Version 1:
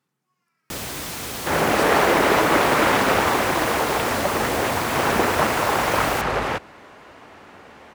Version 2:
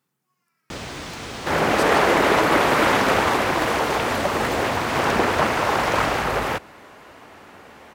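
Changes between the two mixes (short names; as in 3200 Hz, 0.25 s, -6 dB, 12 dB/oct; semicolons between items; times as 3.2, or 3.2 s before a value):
first sound: add air absorption 120 m; master: add high shelf 11000 Hz +11 dB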